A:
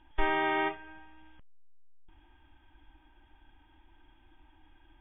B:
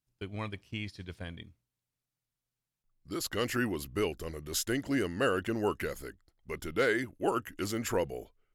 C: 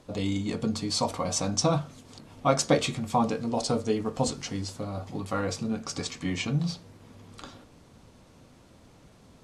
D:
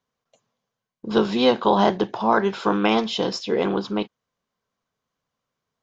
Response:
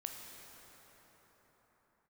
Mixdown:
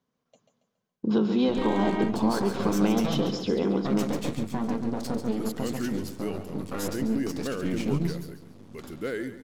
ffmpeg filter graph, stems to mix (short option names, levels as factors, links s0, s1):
-filter_complex "[0:a]adelay=1400,volume=0.531[s0];[1:a]highshelf=f=11000:g=11.5,adelay=2250,volume=0.355,asplit=2[s1][s2];[s2]volume=0.224[s3];[2:a]aeval=exprs='max(val(0),0)':c=same,adelay=1400,volume=0.75,asplit=2[s4][s5];[s5]volume=0.299[s6];[3:a]acompressor=threshold=0.0282:ratio=2.5,volume=0.708,asplit=2[s7][s8];[s8]volume=0.422[s9];[s0][s4]amix=inputs=2:normalize=0,alimiter=limit=0.0668:level=0:latency=1:release=116,volume=1[s10];[s3][s6][s9]amix=inputs=3:normalize=0,aecho=0:1:139|278|417|556|695:1|0.36|0.13|0.0467|0.0168[s11];[s1][s7][s10][s11]amix=inputs=4:normalize=0,equalizer=f=230:w=0.69:g=11"